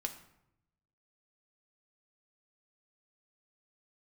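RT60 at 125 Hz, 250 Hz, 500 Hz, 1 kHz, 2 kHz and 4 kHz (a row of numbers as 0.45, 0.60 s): 1.3, 1.0, 0.85, 0.80, 0.65, 0.50 s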